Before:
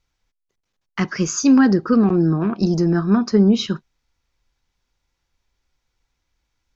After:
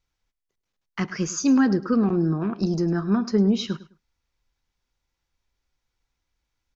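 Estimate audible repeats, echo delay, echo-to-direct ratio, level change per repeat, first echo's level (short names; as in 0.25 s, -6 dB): 2, 0.104 s, -17.5 dB, -12.5 dB, -17.5 dB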